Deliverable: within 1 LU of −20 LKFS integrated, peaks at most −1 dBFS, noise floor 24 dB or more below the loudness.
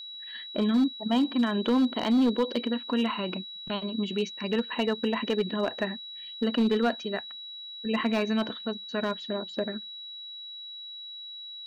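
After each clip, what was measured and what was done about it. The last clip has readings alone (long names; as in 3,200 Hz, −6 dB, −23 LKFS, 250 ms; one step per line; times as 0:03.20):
share of clipped samples 0.8%; peaks flattened at −18.5 dBFS; interfering tone 3,900 Hz; level of the tone −39 dBFS; integrated loudness −29.0 LKFS; sample peak −18.5 dBFS; target loudness −20.0 LKFS
→ clipped peaks rebuilt −18.5 dBFS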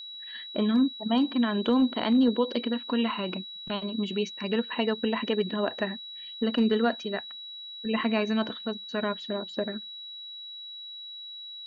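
share of clipped samples 0.0%; interfering tone 3,900 Hz; level of the tone −39 dBFS
→ notch filter 3,900 Hz, Q 30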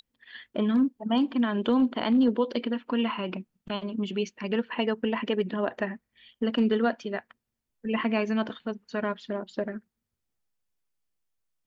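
interfering tone none found; integrated loudness −28.5 LKFS; sample peak −12.0 dBFS; target loudness −20.0 LKFS
→ level +8.5 dB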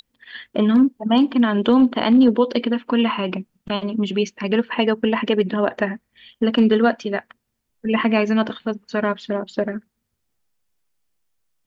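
integrated loudness −20.0 LKFS; sample peak −3.5 dBFS; background noise floor −76 dBFS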